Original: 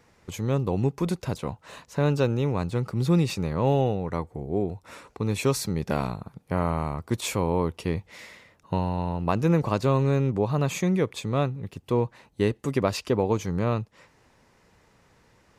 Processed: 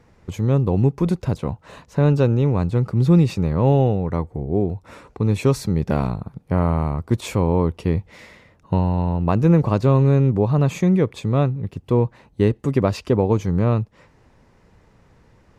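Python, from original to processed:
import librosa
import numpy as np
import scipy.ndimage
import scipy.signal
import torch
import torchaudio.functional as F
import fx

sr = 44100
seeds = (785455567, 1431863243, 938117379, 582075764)

y = fx.tilt_eq(x, sr, slope=-2.0)
y = F.gain(torch.from_numpy(y), 2.5).numpy()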